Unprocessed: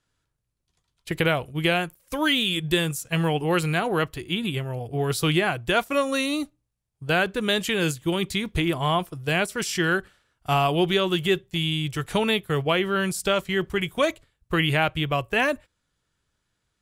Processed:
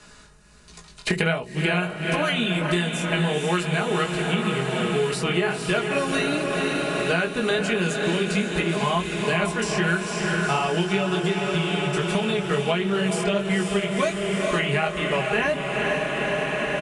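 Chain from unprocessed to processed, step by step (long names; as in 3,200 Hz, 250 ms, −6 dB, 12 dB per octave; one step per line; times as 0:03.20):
low-shelf EQ 95 Hz −5.5 dB
notch filter 3,300 Hz, Q 8.3
comb filter 4.8 ms, depth 75%
chorus effect 1.4 Hz, delay 16.5 ms, depth 5.9 ms
0:11.16–0:12.42: downward compressor, threshold −24 dBFS, peak gain reduction 9 dB
feedback delay with all-pass diffusion 474 ms, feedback 69%, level −6.5 dB
on a send at −18 dB: convolution reverb, pre-delay 3 ms
on the sum: downsampling to 22,050 Hz
multiband upward and downward compressor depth 100%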